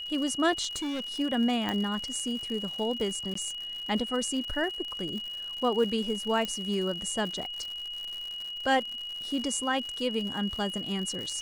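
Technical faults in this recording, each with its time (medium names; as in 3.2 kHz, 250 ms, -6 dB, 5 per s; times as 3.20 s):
crackle 120 per s -35 dBFS
whine 2.9 kHz -35 dBFS
0.75–1.20 s: clipped -29.5 dBFS
1.69 s: pop -16 dBFS
3.34–3.35 s: dropout 14 ms
6.45 s: pop -18 dBFS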